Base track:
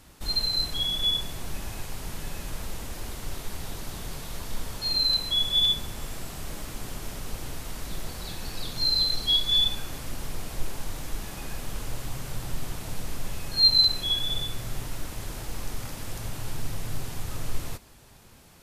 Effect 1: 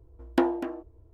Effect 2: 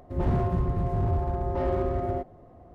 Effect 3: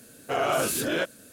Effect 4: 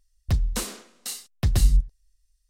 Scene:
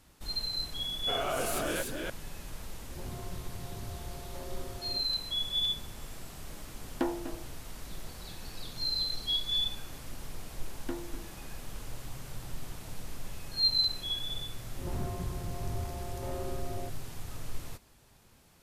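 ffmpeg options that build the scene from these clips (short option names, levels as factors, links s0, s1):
-filter_complex "[2:a]asplit=2[s0][s1];[1:a]asplit=2[s2][s3];[0:a]volume=0.398[s4];[3:a]aecho=1:1:294:0.708[s5];[s3]equalizer=f=730:w=1.2:g=-7[s6];[s5]atrim=end=1.32,asetpts=PTS-STARTPTS,volume=0.398,afade=t=in:d=0.004:c=hsin,afade=t=out:st=1.316:d=0.004:c=hsin,adelay=780[s7];[s0]atrim=end=2.74,asetpts=PTS-STARTPTS,volume=0.133,afade=t=in:d=0.004:c=hsin,afade=t=out:st=2.736:d=0.004:c=hsin,adelay=2790[s8];[s2]atrim=end=1.13,asetpts=PTS-STARTPTS,volume=0.398,afade=t=in:d=0.004:c=hsin,afade=t=out:st=1.126:d=0.004:c=hsin,adelay=6630[s9];[s6]atrim=end=1.13,asetpts=PTS-STARTPTS,volume=0.211,afade=t=in:d=0.004:c=hsin,afade=t=out:st=1.126:d=0.004:c=hsin,adelay=10510[s10];[s1]atrim=end=2.74,asetpts=PTS-STARTPTS,volume=0.266,afade=t=in:d=0.004:c=hsin,afade=t=out:st=2.736:d=0.004:c=hsin,adelay=14670[s11];[s4][s7][s8][s9][s10][s11]amix=inputs=6:normalize=0"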